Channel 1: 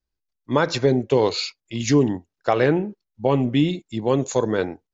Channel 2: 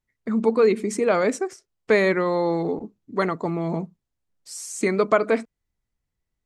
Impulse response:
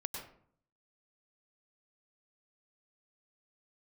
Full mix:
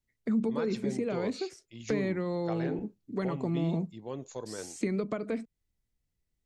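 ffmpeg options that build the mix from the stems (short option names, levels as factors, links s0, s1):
-filter_complex "[0:a]volume=0.112[s0];[1:a]acrossover=split=4500[s1][s2];[s2]acompressor=threshold=0.00398:ratio=4:attack=1:release=60[s3];[s1][s3]amix=inputs=2:normalize=0,equalizer=f=1100:t=o:w=1.6:g=-8,acrossover=split=200[s4][s5];[s5]acompressor=threshold=0.0282:ratio=10[s6];[s4][s6]amix=inputs=2:normalize=0,volume=0.944[s7];[s0][s7]amix=inputs=2:normalize=0"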